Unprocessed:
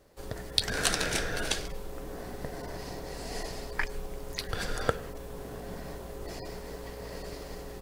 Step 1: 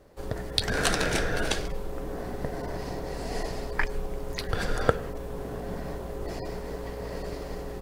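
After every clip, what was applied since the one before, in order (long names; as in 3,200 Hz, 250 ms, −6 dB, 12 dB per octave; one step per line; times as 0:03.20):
high-shelf EQ 2,300 Hz −8 dB
level +6 dB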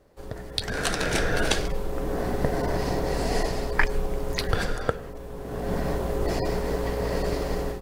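automatic gain control gain up to 12 dB
level −3.5 dB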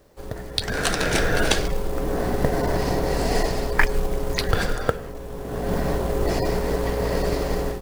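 log-companded quantiser 6 bits
level +3.5 dB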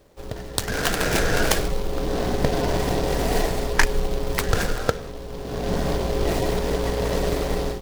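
short delay modulated by noise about 3,400 Hz, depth 0.054 ms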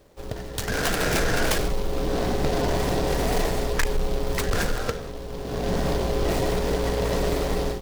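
hard clipping −17.5 dBFS, distortion −12 dB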